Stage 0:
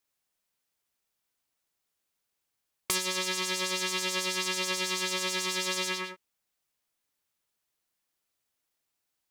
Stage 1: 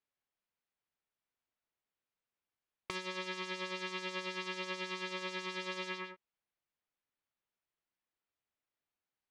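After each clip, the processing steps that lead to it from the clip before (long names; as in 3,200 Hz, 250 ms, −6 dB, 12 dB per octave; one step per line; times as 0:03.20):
low-pass filter 2,900 Hz 12 dB per octave
level −6.5 dB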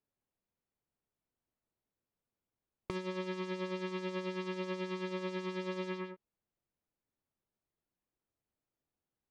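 tilt shelving filter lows +9 dB, about 810 Hz
level +1 dB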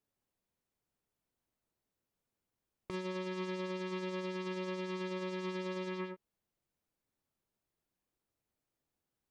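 brickwall limiter −30.5 dBFS, peak gain reduction 8.5 dB
level +2.5 dB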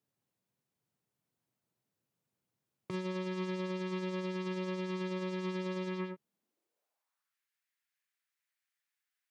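high-pass filter sweep 130 Hz → 1,800 Hz, 0:06.15–0:07.38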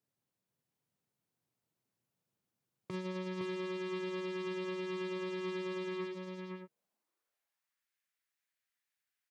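single-tap delay 511 ms −4.5 dB
level −2.5 dB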